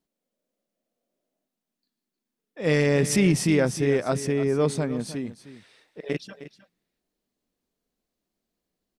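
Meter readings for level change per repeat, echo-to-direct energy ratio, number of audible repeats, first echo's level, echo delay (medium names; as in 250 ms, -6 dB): no regular repeats, -14.0 dB, 1, -14.0 dB, 310 ms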